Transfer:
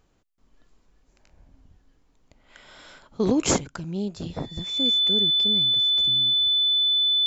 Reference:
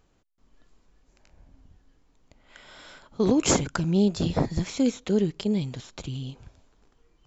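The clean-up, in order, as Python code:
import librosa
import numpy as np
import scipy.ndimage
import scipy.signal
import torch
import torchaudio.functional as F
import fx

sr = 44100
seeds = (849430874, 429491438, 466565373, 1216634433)

y = fx.notch(x, sr, hz=3500.0, q=30.0)
y = fx.fix_level(y, sr, at_s=3.58, step_db=7.5)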